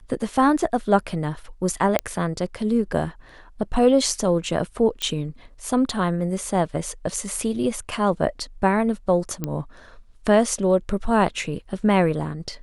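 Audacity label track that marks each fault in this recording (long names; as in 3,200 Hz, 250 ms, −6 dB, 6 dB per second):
1.990000	1.990000	click −6 dBFS
5.020000	5.020000	click −11 dBFS
9.440000	9.440000	click −12 dBFS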